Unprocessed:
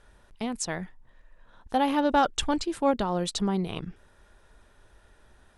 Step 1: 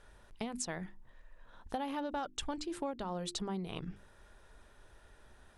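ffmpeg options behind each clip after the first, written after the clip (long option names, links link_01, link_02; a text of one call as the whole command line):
ffmpeg -i in.wav -af "bandreject=frequency=50:width_type=h:width=6,bandreject=frequency=100:width_type=h:width=6,bandreject=frequency=150:width_type=h:width=6,bandreject=frequency=200:width_type=h:width=6,bandreject=frequency=250:width_type=h:width=6,bandreject=frequency=300:width_type=h:width=6,bandreject=frequency=350:width_type=h:width=6,acompressor=threshold=-34dB:ratio=6,volume=-1.5dB" out.wav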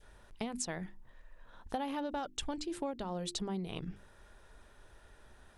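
ffmpeg -i in.wav -af "adynamicequalizer=threshold=0.00178:dfrequency=1200:dqfactor=1.3:tfrequency=1200:tqfactor=1.3:attack=5:release=100:ratio=0.375:range=2.5:mode=cutabove:tftype=bell,volume=1dB" out.wav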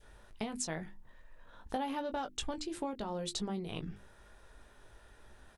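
ffmpeg -i in.wav -filter_complex "[0:a]asplit=2[link_01][link_02];[link_02]adelay=19,volume=-7.5dB[link_03];[link_01][link_03]amix=inputs=2:normalize=0" out.wav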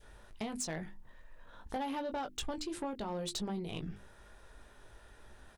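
ffmpeg -i in.wav -af "asoftclip=type=tanh:threshold=-32dB,volume=1.5dB" out.wav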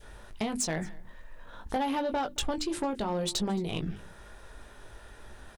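ffmpeg -i in.wav -af "aecho=1:1:221:0.0668,volume=7.5dB" out.wav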